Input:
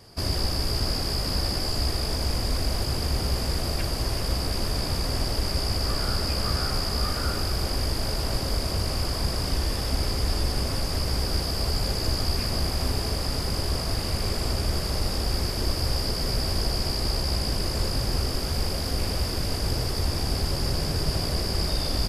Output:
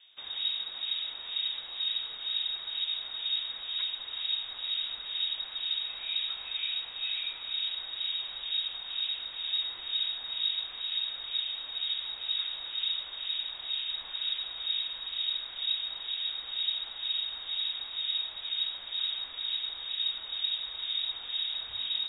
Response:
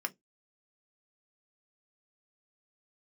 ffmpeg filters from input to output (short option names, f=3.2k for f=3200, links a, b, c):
-filter_complex "[0:a]acrossover=split=2100[a][b];[a]aeval=exprs='val(0)*(1-0.7/2+0.7/2*cos(2*PI*2.1*n/s))':c=same[c];[b]aeval=exprs='val(0)*(1-0.7/2-0.7/2*cos(2*PI*2.1*n/s))':c=same[d];[c][d]amix=inputs=2:normalize=0,lowpass=f=3.2k:t=q:w=0.5098,lowpass=f=3.2k:t=q:w=0.6013,lowpass=f=3.2k:t=q:w=0.9,lowpass=f=3.2k:t=q:w=2.563,afreqshift=-3800,asubboost=boost=4:cutoff=72,volume=-5.5dB"